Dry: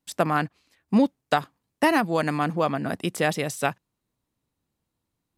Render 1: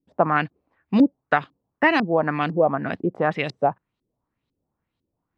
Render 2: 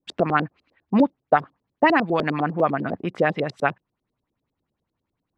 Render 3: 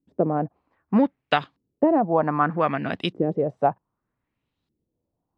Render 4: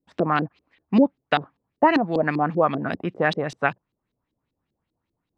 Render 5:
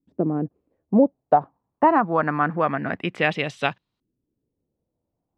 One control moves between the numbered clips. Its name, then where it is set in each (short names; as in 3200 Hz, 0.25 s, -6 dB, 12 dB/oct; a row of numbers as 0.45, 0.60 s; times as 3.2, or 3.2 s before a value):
LFO low-pass, rate: 2, 10, 0.64, 5.1, 0.25 Hz